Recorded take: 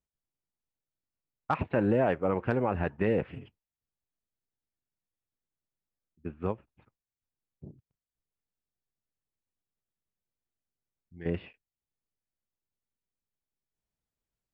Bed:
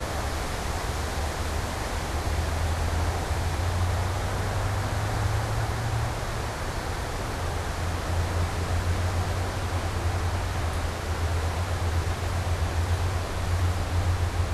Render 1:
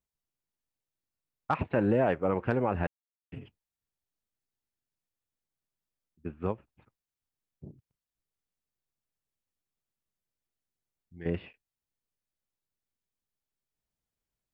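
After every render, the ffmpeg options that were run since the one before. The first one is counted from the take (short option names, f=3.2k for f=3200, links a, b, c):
-filter_complex "[0:a]asplit=3[a][b][c];[a]atrim=end=2.87,asetpts=PTS-STARTPTS,afade=t=out:st=2.866:d=0.004:c=hsin[d];[b]atrim=start=2.87:end=3.32,asetpts=PTS-STARTPTS,volume=0[e];[c]atrim=start=3.32,asetpts=PTS-STARTPTS,afade=t=in:d=0.004:c=hsin[f];[d][e][f]concat=n=3:v=0:a=1"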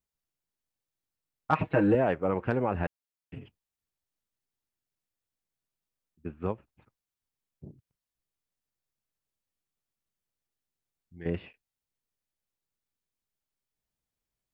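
-filter_complex "[0:a]asettb=1/sr,asplit=3[a][b][c];[a]atrim=end=1.514[d];[b]atrim=start=1.51:end=1.95,asetpts=PTS-STARTPTS,afade=t=in:d=0.004:c=qsin,afade=t=out:st=0.436:d=0.004:c=qsin,aecho=1:1:6.4:1,atrim=end_sample=19404[e];[c]atrim=start=1.946[f];[d][e]acrossfade=d=0.004:c1=hsin:c2=qsin[g];[g][f]acrossfade=d=0.004:c1=qsin:c2=hsin"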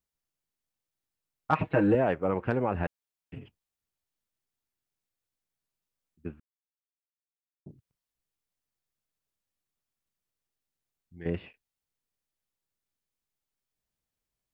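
-filter_complex "[0:a]asplit=3[a][b][c];[a]atrim=end=6.4,asetpts=PTS-STARTPTS,afade=t=out:st=6.396:d=0.004:c=hsin[d];[b]atrim=start=6.4:end=7.66,asetpts=PTS-STARTPTS,volume=0[e];[c]atrim=start=7.66,asetpts=PTS-STARTPTS,afade=t=in:d=0.004:c=hsin[f];[d][e][f]concat=n=3:v=0:a=1"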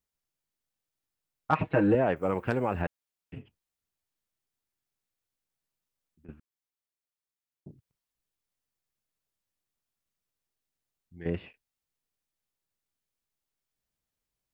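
-filter_complex "[0:a]asettb=1/sr,asplit=3[a][b][c];[a]atrim=end=2.164[d];[b]atrim=start=2.16:end=2.82,asetpts=PTS-STARTPTS,afade=t=in:d=0.004:c=qsin,afade=t=out:st=0.656:d=0.004:c=qsin,aemphasis=mode=production:type=75fm[e];[c]atrim=start=2.816[f];[d][e]acrossfade=d=0.004:c1=hsin:c2=qsin[g];[g][f]acrossfade=d=0.004:c1=qsin:c2=hsin,asettb=1/sr,asplit=3[h][i][j];[h]atrim=end=3.414[k];[i]atrim=start=3.41:end=6.29,asetpts=PTS-STARTPTS,afade=t=in:d=0.004:c=qsin,afade=t=out:st=2.876:d=0.004:c=qsin,acompressor=threshold=-56dB:ratio=3:attack=3.2:release=140:knee=1:detection=peak[l];[j]atrim=start=6.286[m];[k][l]acrossfade=d=0.004:c1=hsin:c2=qsin[n];[n][m]acrossfade=d=0.004:c1=qsin:c2=hsin"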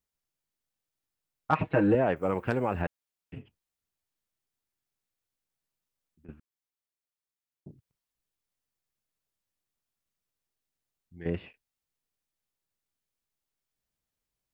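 -af anull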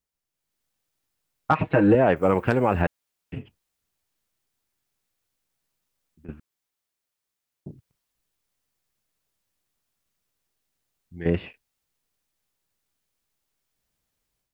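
-af "alimiter=limit=-15.5dB:level=0:latency=1:release=234,dynaudnorm=f=300:g=3:m=8.5dB"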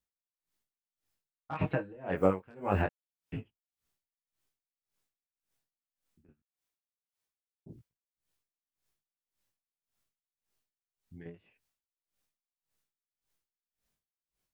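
-af "flanger=delay=17.5:depth=4.1:speed=0.25,aeval=exprs='val(0)*pow(10,-30*(0.5-0.5*cos(2*PI*1.8*n/s))/20)':c=same"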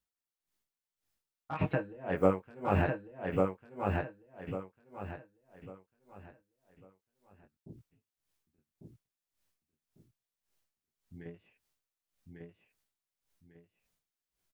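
-af "aecho=1:1:1148|2296|3444|4592:0.708|0.212|0.0637|0.0191"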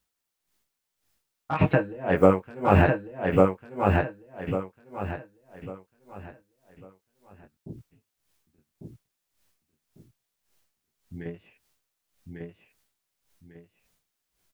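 -af "volume=10dB,alimiter=limit=-3dB:level=0:latency=1"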